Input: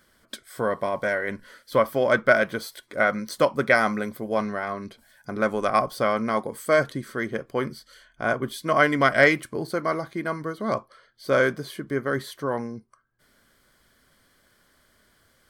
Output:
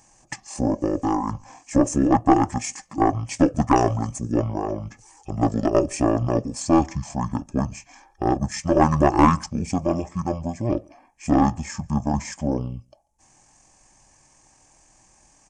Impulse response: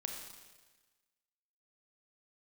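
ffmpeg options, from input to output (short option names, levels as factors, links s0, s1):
-filter_complex "[0:a]equalizer=f=64:t=o:w=0.46:g=10,asetrate=23361,aresample=44100,atempo=1.88775,aeval=exprs='(tanh(2.82*val(0)+0.4)-tanh(0.4))/2.82':c=same,highshelf=f=5100:t=q:w=3:g=7.5,asplit=2[s0][s1];[s1]adelay=139.9,volume=0.0355,highshelf=f=4000:g=-3.15[s2];[s0][s2]amix=inputs=2:normalize=0,volume=1.68"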